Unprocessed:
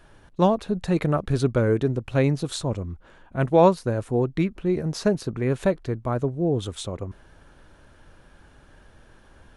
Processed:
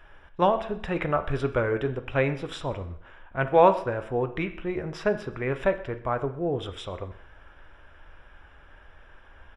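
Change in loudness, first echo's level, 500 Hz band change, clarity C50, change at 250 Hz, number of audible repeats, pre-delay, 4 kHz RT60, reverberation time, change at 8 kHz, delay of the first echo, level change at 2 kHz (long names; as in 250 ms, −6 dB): −3.0 dB, −22.0 dB, −2.0 dB, 13.0 dB, −7.5 dB, 1, 9 ms, 0.60 s, 0.60 s, below −10 dB, 127 ms, +3.5 dB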